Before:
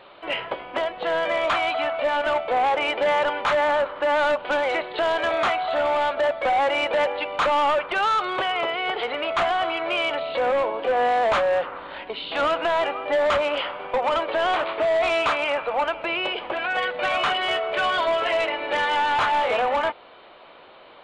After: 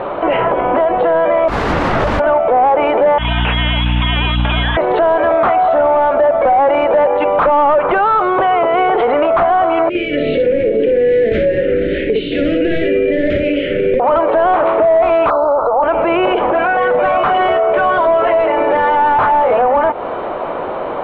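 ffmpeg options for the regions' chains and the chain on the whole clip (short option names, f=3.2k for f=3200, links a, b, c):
-filter_complex "[0:a]asettb=1/sr,asplit=3[a][b][c];[a]atrim=end=1.484[d];[b]atrim=start=1.48:end=2.2,asetpts=PTS-STARTPTS,afade=t=in:d=0.004:c=qsin,afade=t=out:st=0.716:d=0.004:c=qsin,aeval=exprs='val(0)+0.0158*(sin(2*PI*50*n/s)+sin(2*PI*2*50*n/s)/2+sin(2*PI*3*50*n/s)/3+sin(2*PI*4*50*n/s)/4+sin(2*PI*5*50*n/s)/5)':c=same,aeval=exprs='(mod(18.8*val(0)+1,2)-1)/18.8':c=same[e];[c]atrim=start=2.196[f];[d][e]acrossfade=d=0.004:c1=hsin:c2=qsin[g];[g][f]acrossfade=d=0.004:c1=qsin:c2=hsin,asettb=1/sr,asplit=3[h][i][j];[h]atrim=end=3.184[k];[i]atrim=start=3.18:end=4.77,asetpts=PTS-STARTPTS,afade=t=in:d=0.004:c=qsin,afade=t=out:st=1.586:d=0.004:c=qsin,lowpass=f=3.3k:t=q:w=0.5098,lowpass=f=3.3k:t=q:w=0.6013,lowpass=f=3.3k:t=q:w=0.9,lowpass=f=3.3k:t=q:w=2.563,afreqshift=-3900,acompressor=threshold=-25dB:ratio=4:attack=3.2:release=140:knee=1:detection=peak,aeval=exprs='val(0)+0.01*(sin(2*PI*60*n/s)+sin(2*PI*2*60*n/s)/2+sin(2*PI*3*60*n/s)/3+sin(2*PI*4*60*n/s)/4+sin(2*PI*5*60*n/s)/5)':c=same[l];[j]atrim=start=4.766[m];[k][l]acrossfade=d=0.004:c1=hsin:c2=qsin[n];[n][m]acrossfade=d=0.004:c1=qsin:c2=hsin,asettb=1/sr,asplit=3[o][p][q];[o]atrim=end=9.894[r];[p]atrim=start=9.89:end=14,asetpts=PTS-STARTPTS,afade=t=in:d=0.004:c=qsin,afade=t=out:st=4.106:d=0.004:c=qsin,asuperstop=centerf=950:order=8:qfactor=0.67,acompressor=threshold=-36dB:ratio=5:attack=3.2:release=140:knee=1:detection=peak,aecho=1:1:59|543:0.631|0.133,atrim=end_sample=181251[s];[q]atrim=start=13.996[t];[r][s]acrossfade=d=0.004:c1=hsin:c2=qsin[u];[u][t]acrossfade=d=0.004:c1=qsin:c2=hsin,asettb=1/sr,asplit=3[v][w][x];[v]atrim=end=15.304[y];[w]atrim=start=15.3:end=15.83,asetpts=PTS-STARTPTS,afade=t=in:d=0.004:c=qsin,afade=t=out:st=0.526:d=0.004:c=qsin,asuperstop=centerf=2400:order=20:qfactor=0.93,equalizer=f=190:w=0.96:g=-10.5[z];[x]atrim=start=15.826[aa];[y][z]acrossfade=d=0.004:c1=hsin:c2=qsin[ab];[ab][aa]acrossfade=d=0.004:c1=qsin:c2=hsin,lowpass=1k,acompressor=threshold=-30dB:ratio=6,alimiter=level_in=34.5dB:limit=-1dB:release=50:level=0:latency=1,volume=-5.5dB"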